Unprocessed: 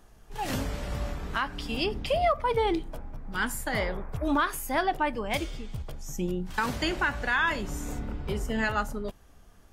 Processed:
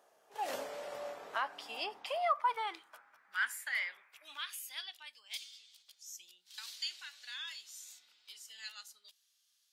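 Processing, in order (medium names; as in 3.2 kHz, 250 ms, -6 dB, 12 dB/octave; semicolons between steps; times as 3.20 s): high-pass sweep 570 Hz -> 4 kHz, 1.21–5.15 s; trim -8.5 dB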